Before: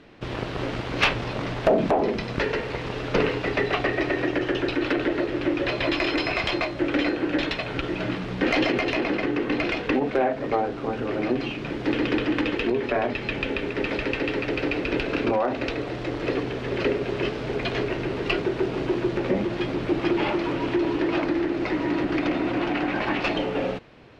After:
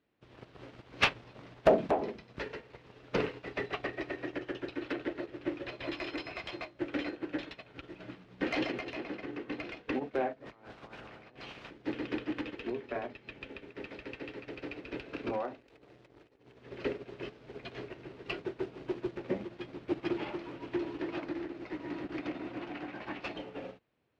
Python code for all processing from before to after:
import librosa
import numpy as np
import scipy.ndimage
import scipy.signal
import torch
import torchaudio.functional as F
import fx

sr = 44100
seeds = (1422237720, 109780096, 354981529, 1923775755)

y = fx.spec_clip(x, sr, under_db=17, at=(10.45, 11.69), fade=0.02)
y = fx.over_compress(y, sr, threshold_db=-30.0, ratio=-1.0, at=(10.45, 11.69), fade=0.02)
y = fx.chain(y, sr, fx.halfwave_gain(db=-12.0),
    fx.peak_eq(hz=400.0, db=3.0, octaves=0.36),
    fx.over_compress(threshold_db=-32.0, ratio=-0.5), at=(15.59, 16.59))
y = scipy.signal.sosfilt(scipy.signal.butter(2, 47.0, 'highpass', fs=sr, output='sos'), y)
y = fx.upward_expand(y, sr, threshold_db=-33.0, expansion=2.5)
y = y * librosa.db_to_amplitude(-1.5)